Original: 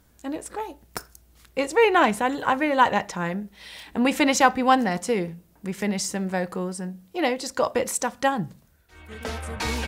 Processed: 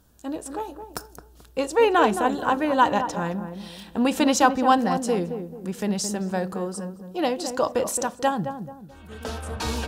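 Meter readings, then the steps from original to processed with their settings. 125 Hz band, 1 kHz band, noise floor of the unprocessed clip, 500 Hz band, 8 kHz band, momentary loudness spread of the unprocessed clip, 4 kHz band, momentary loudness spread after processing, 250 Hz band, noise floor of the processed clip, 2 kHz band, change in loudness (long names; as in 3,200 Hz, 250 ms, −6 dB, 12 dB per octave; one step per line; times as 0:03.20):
+0.5 dB, 0.0 dB, −59 dBFS, +0.5 dB, 0.0 dB, 17 LU, −1.0 dB, 17 LU, +1.0 dB, −50 dBFS, −4.0 dB, 0.0 dB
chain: parametric band 2,100 Hz −12.5 dB 0.35 octaves
on a send: feedback echo with a low-pass in the loop 218 ms, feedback 40%, low-pass 860 Hz, level −7 dB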